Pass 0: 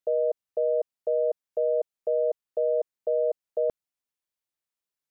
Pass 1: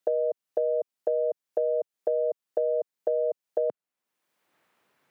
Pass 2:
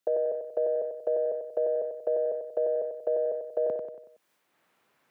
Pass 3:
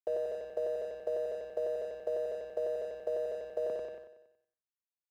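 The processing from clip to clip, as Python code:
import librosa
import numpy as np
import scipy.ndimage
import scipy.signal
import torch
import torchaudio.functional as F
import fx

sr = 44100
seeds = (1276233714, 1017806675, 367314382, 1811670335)

y1 = scipy.signal.sosfilt(scipy.signal.butter(2, 140.0, 'highpass', fs=sr, output='sos'), x)
y1 = fx.band_squash(y1, sr, depth_pct=100)
y1 = y1 * librosa.db_to_amplitude(-1.5)
y2 = fx.echo_feedback(y1, sr, ms=93, feedback_pct=45, wet_db=-8.0)
y2 = fx.transient(y2, sr, attack_db=-3, sustain_db=5)
y3 = fx.add_hum(y2, sr, base_hz=60, snr_db=30)
y3 = np.sign(y3) * np.maximum(np.abs(y3) - 10.0 ** (-48.5 / 20.0), 0.0)
y3 = fx.echo_feedback(y3, sr, ms=93, feedback_pct=58, wet_db=-15.0)
y3 = y3 * librosa.db_to_amplitude(-6.0)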